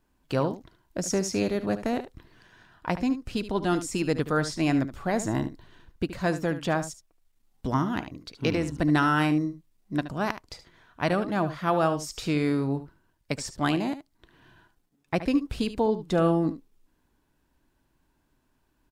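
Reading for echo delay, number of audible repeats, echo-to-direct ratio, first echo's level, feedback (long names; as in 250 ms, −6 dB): 73 ms, 1, −12.5 dB, −12.5 dB, repeats not evenly spaced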